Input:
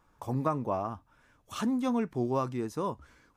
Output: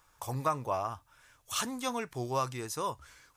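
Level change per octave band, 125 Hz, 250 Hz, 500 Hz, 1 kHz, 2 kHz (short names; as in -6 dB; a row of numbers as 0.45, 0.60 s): -3.5, -10.0, -3.0, +1.0, +4.5 dB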